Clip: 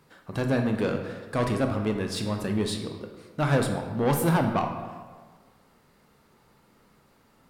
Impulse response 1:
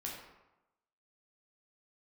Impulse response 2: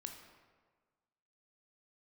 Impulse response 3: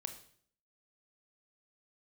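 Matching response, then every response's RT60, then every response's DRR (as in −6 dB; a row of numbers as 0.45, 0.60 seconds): 2; 0.95, 1.5, 0.55 seconds; −3.5, 4.0, 7.0 decibels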